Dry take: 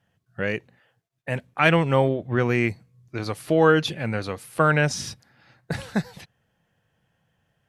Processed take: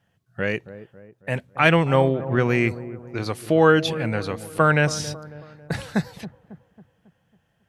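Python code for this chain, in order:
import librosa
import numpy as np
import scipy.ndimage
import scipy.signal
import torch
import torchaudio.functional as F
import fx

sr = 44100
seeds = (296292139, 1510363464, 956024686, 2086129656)

y = fx.echo_wet_lowpass(x, sr, ms=274, feedback_pct=47, hz=930.0, wet_db=-13.5)
y = y * librosa.db_to_amplitude(1.5)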